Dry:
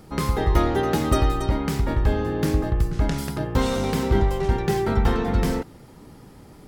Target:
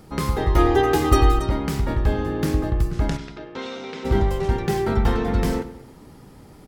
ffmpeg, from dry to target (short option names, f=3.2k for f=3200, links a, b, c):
-filter_complex "[0:a]asettb=1/sr,asplit=3[a][b][c];[a]atrim=end=0.584[d];[b]atrim=start=0.58:end=1.39,asetpts=PTS-STARTPTS,afade=t=in:d=0.004:c=qsin,afade=t=out:st=0.806:d=0.004:c=qsin,aecho=1:1:2.5:0.98,atrim=end_sample=35721[e];[c]atrim=start=1.386[f];[d][e]acrossfade=d=0.004:c1=hsin:c2=qsin[g];[g][f]acrossfade=d=0.004:c1=qsin:c2=hsin,asplit=3[h][i][j];[h]afade=t=out:st=3.16:d=0.02[k];[i]highpass=480,equalizer=f=560:t=q:w=4:g=-8,equalizer=f=800:t=q:w=4:g=-8,equalizer=f=1.1k:t=q:w=4:g=-9,equalizer=f=1.7k:t=q:w=4:g=-6,equalizer=f=3k:t=q:w=4:g=-4,equalizer=f=4.6k:t=q:w=4:g=-7,lowpass=f=4.8k:w=0.5412,lowpass=f=4.8k:w=1.3066,afade=t=in:st=3.16:d=0.02,afade=t=out:st=4.04:d=0.02[l];[j]afade=t=in:st=4.04:d=0.02[m];[k][l][m]amix=inputs=3:normalize=0,asplit=2[n][o];[o]adelay=100,lowpass=f=3.7k:p=1,volume=-14.5dB,asplit=2[p][q];[q]adelay=100,lowpass=f=3.7k:p=1,volume=0.47,asplit=2[r][s];[s]adelay=100,lowpass=f=3.7k:p=1,volume=0.47,asplit=2[t][u];[u]adelay=100,lowpass=f=3.7k:p=1,volume=0.47[v];[n][p][r][t][v]amix=inputs=5:normalize=0"